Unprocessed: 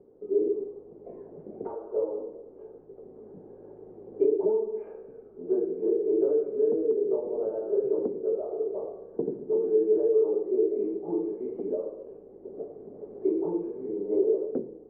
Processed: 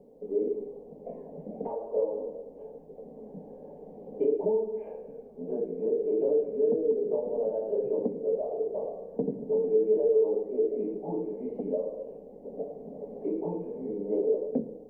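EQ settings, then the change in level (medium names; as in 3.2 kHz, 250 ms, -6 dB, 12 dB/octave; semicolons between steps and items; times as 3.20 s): dynamic bell 640 Hz, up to -4 dB, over -35 dBFS, Q 0.97; static phaser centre 360 Hz, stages 6; +7.0 dB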